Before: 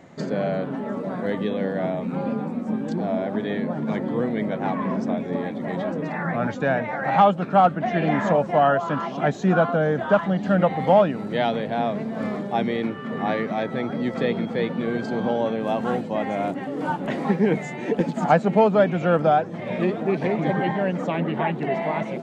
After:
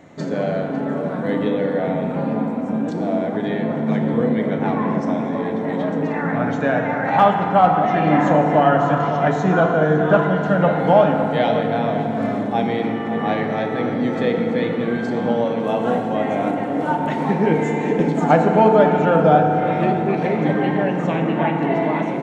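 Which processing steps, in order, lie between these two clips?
band-stop 4.8 kHz, Q 10; echo from a far wall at 95 m, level -10 dB; hard clipper -5.5 dBFS, distortion -53 dB; FDN reverb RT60 3.4 s, high-frequency decay 0.45×, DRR 2 dB; trim +1.5 dB

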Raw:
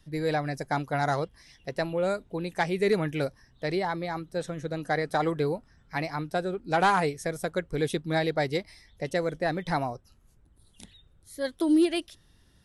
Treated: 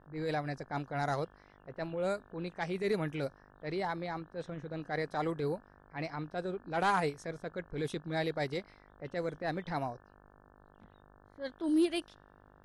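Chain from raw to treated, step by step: transient shaper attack -8 dB, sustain -3 dB; mains buzz 50 Hz, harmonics 35, -56 dBFS -1 dB/octave; level-controlled noise filter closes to 1.2 kHz, open at -24.5 dBFS; trim -5 dB

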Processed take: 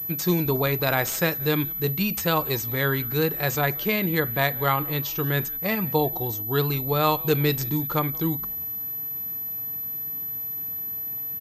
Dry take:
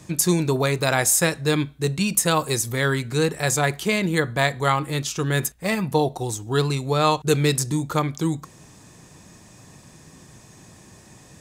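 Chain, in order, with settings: frequency-shifting echo 178 ms, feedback 51%, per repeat -120 Hz, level -23.5 dB; class-D stage that switches slowly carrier 12 kHz; trim -2.5 dB

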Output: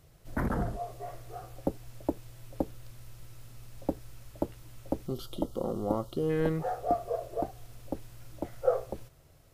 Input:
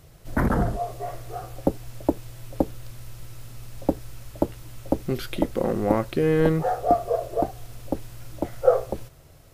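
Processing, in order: time-frequency box 5.07–6.30 s, 1.4–2.8 kHz -18 dB; trim -8.5 dB

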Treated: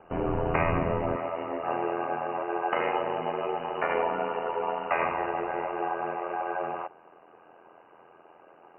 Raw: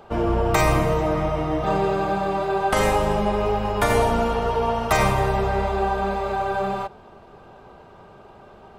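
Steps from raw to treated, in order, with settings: high-pass 52 Hz 12 dB/octave, from 1.16 s 350 Hz; ring modulator 42 Hz; brick-wall FIR low-pass 3 kHz; trim -3.5 dB

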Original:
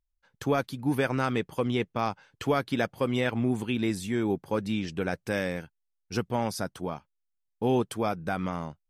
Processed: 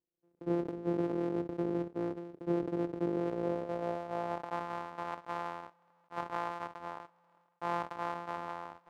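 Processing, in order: sorted samples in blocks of 256 samples; band-pass sweep 370 Hz -> 950 Hz, 3.07–4.66 s; decay stretcher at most 56 dB/s

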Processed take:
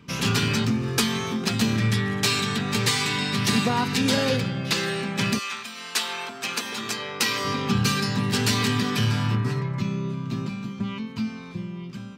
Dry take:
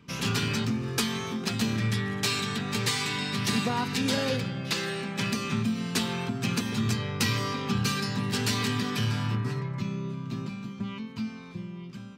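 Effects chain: 5.38–7.44 s: high-pass 1.1 kHz -> 330 Hz 12 dB/octave; trim +5 dB

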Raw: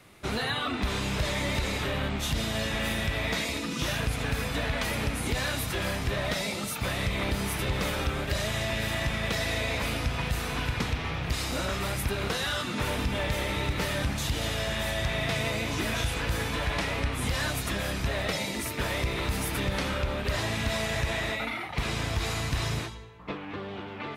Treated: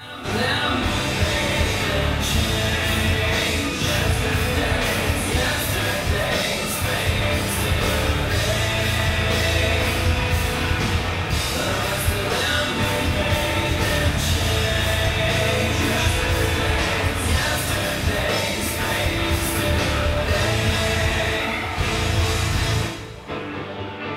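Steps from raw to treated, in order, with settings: reverse echo 526 ms -12.5 dB; two-slope reverb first 0.59 s, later 3 s, from -21 dB, DRR -8 dB

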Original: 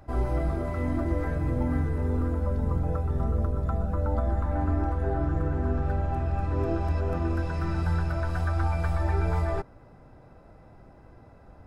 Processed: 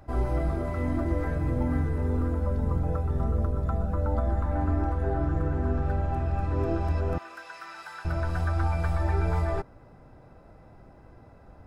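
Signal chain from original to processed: 7.18–8.05 s: high-pass 1.2 kHz 12 dB/octave

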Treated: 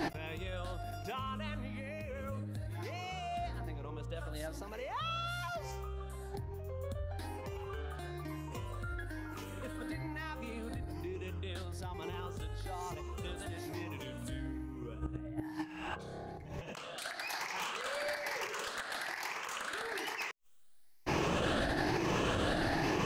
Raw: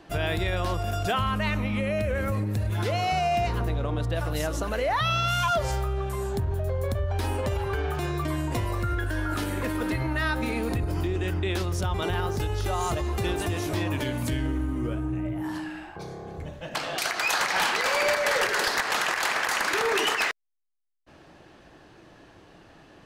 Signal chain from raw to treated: drifting ripple filter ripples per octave 0.77, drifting +1.1 Hz, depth 8 dB; inverted gate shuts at -22 dBFS, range -35 dB; compressor with a negative ratio -52 dBFS, ratio -1; trim +15.5 dB

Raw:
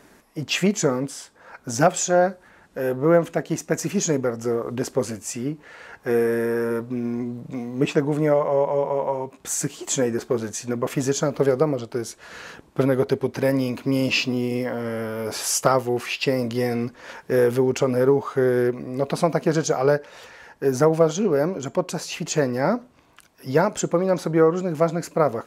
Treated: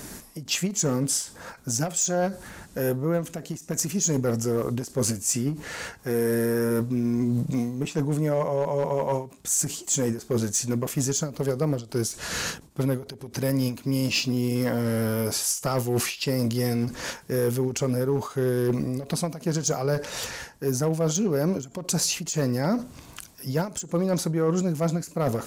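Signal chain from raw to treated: tone controls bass +10 dB, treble +14 dB; reverse; compression 12:1, threshold -27 dBFS, peak gain reduction 19.5 dB; reverse; hard clipper -23 dBFS, distortion -22 dB; endings held to a fixed fall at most 160 dB/s; trim +6.5 dB

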